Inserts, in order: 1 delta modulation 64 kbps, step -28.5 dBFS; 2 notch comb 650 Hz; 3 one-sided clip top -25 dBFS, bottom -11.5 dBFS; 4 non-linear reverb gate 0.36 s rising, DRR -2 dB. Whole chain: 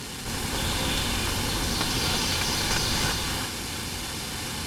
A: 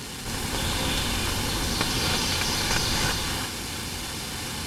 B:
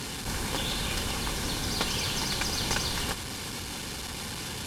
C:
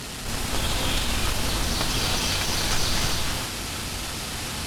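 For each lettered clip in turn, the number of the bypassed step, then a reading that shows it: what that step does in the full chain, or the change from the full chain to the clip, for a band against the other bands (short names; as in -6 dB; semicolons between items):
3, distortion -14 dB; 4, loudness change -4.0 LU; 2, crest factor change -3.0 dB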